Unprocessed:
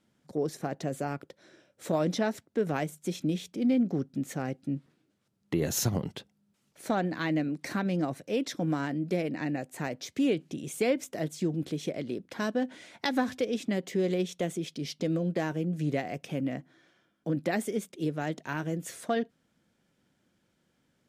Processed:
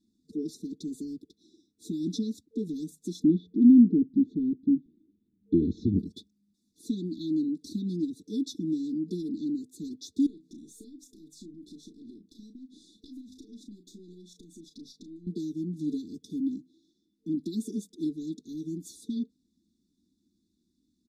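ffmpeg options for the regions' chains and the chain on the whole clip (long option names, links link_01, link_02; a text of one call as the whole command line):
ffmpeg -i in.wav -filter_complex "[0:a]asettb=1/sr,asplit=3[link_01][link_02][link_03];[link_01]atrim=end=3.244[link_04];[link_02]atrim=start=3.24:end=5.99,asetpts=PTS-STARTPTS,afade=type=in:duration=0.004:curve=qsin,afade=type=out:start_time=2.746:duration=0.004:curve=qsin,lowpass=frequency=2200:width=0.5412,lowpass=frequency=2200:width=1.3066,acontrast=88[link_05];[link_03]atrim=start=5.986[link_06];[link_04][link_05]acrossfade=duration=0.004:curve1=hsin:curve2=qsin[link_07];[link_07][link_06]acrossfade=duration=0.004:curve1=qsin:curve2=hsin,asettb=1/sr,asplit=3[link_08][link_09][link_10];[link_08]atrim=end=10.264[link_11];[link_09]atrim=start=10.26:end=15.27,asetpts=PTS-STARTPTS,afade=type=in:duration=0.004:curve=qsin,afade=type=out:start_time=5.006:duration=0.004:curve=qsin,acompressor=threshold=-43dB:ratio=5:attack=3.2:release=140:knee=1:detection=peak,asplit=2[link_12][link_13];[link_13]adelay=34,volume=-8.5dB[link_14];[link_12][link_14]amix=inputs=2:normalize=0,atrim=end_sample=220941,aeval=exprs='(tanh(35.5*val(0)+0.4)-tanh(0.4))/35.5':channel_layout=same[link_15];[link_10]atrim=start=15.266[link_16];[link_11][link_15]acrossfade=duration=0.004:curve1=hsin:curve2=qsin[link_17];[link_17][link_16]acrossfade=duration=0.004:curve1=qsin:curve2=hsin,afftfilt=real='re*(1-between(b*sr/4096,450,3400))':imag='im*(1-between(b*sr/4096,450,3400))':win_size=4096:overlap=0.75,highshelf=frequency=9300:gain=-12,aecho=1:1:3.7:0.99,volume=-3dB" out.wav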